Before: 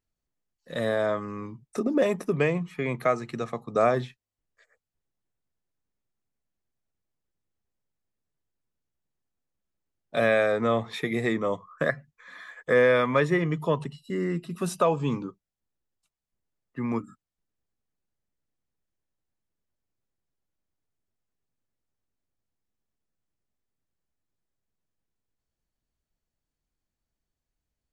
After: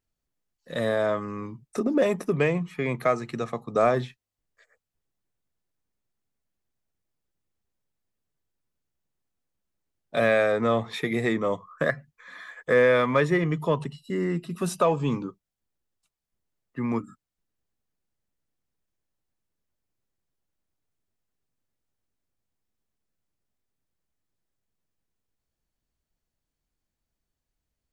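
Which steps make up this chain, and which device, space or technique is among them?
parallel distortion (in parallel at -14 dB: hard clipper -24.5 dBFS, distortion -7 dB)

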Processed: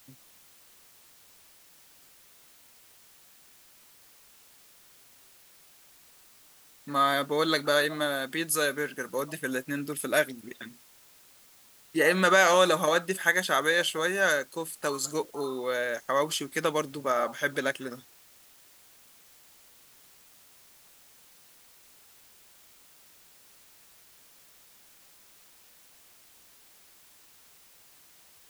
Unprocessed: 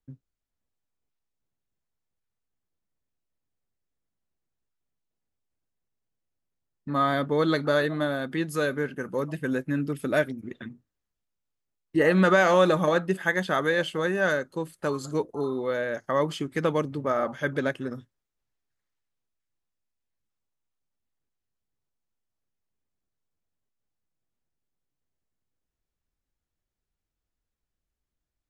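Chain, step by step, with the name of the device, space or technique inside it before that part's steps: turntable without a phono preamp (RIAA curve recording; white noise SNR 25 dB)

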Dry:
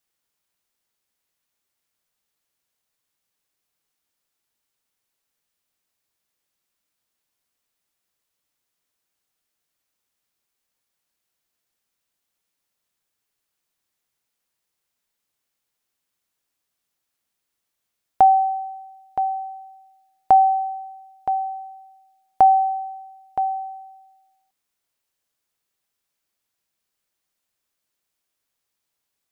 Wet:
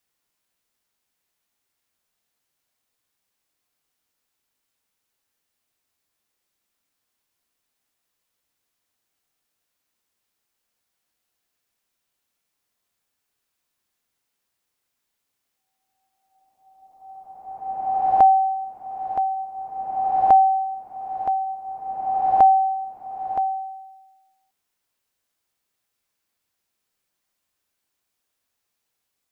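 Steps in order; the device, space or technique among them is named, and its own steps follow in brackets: reverse reverb (reverse; reverberation RT60 2.1 s, pre-delay 3 ms, DRR 2 dB; reverse)

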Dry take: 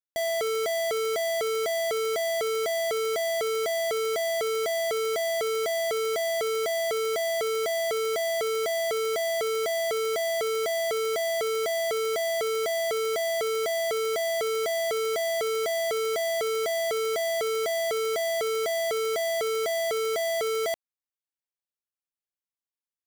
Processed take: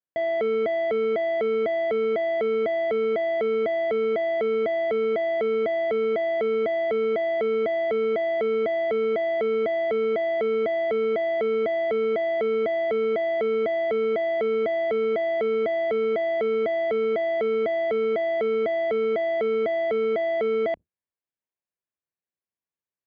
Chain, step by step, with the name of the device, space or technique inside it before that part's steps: sub-octave bass pedal (octave divider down 1 oct, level -3 dB; cabinet simulation 76–2200 Hz, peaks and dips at 130 Hz -5 dB, 250 Hz -4 dB, 810 Hz -5 dB, 1.3 kHz -8 dB, 2 kHz -3 dB); trim +5 dB

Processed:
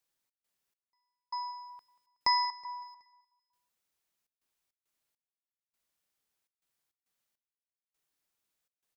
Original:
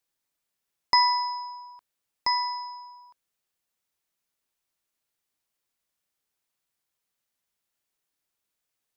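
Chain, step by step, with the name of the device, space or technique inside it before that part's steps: trance gate with a delay (trance gate "xx.xx....xxxxx." 102 bpm -60 dB; feedback delay 186 ms, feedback 48%, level -20 dB); trim -1.5 dB

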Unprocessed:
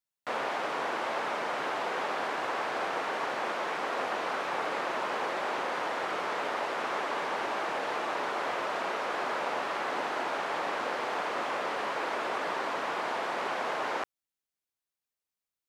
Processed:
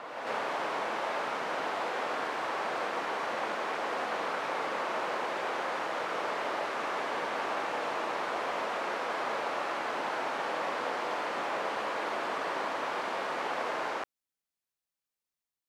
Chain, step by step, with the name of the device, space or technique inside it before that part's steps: reverse reverb (reverse; reverberation RT60 2.2 s, pre-delay 18 ms, DRR 2.5 dB; reverse); trim -3 dB

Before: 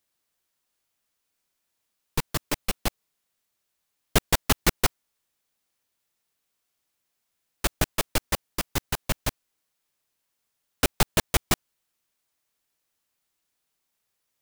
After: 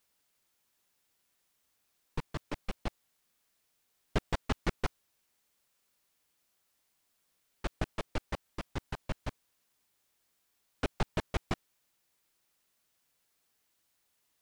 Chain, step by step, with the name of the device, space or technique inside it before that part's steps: cassette deck with a dirty head (tape spacing loss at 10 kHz 23 dB; wow and flutter 18 cents; white noise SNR 35 dB); trim -7.5 dB

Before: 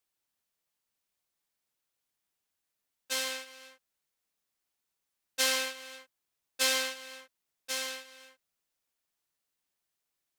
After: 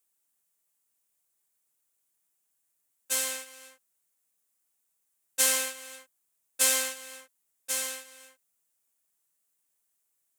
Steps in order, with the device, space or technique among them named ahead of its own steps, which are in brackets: budget condenser microphone (high-pass 92 Hz; resonant high shelf 6.2 kHz +8.5 dB, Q 1.5)

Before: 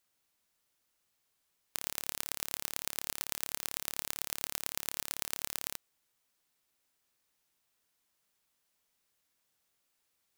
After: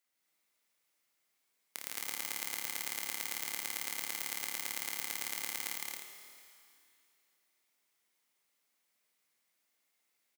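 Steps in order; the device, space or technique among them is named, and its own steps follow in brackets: stadium PA (high-pass 190 Hz 12 dB/octave; peaking EQ 2.1 kHz +8 dB 0.23 oct; loudspeakers at several distances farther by 54 m -3 dB, 74 m -3 dB, 92 m -4 dB; reverberation RT60 2.6 s, pre-delay 6 ms, DRR 6 dB); trim -5.5 dB

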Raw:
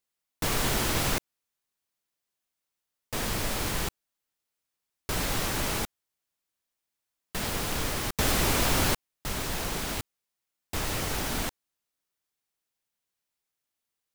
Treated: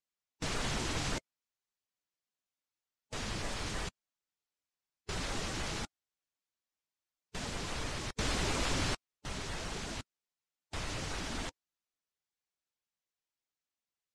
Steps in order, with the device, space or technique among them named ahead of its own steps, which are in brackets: clip after many re-uploads (low-pass 8.2 kHz 24 dB/octave; coarse spectral quantiser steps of 15 dB); trim -7 dB

